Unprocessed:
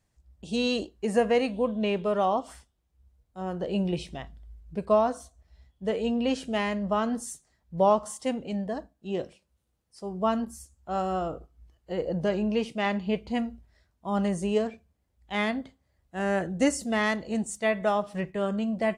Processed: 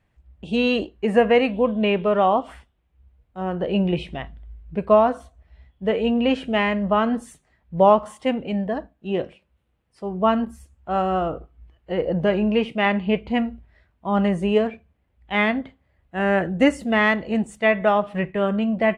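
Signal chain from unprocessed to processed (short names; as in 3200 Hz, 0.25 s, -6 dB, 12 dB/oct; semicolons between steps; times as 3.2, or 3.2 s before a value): resonant high shelf 3900 Hz -13 dB, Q 1.5; gain +6.5 dB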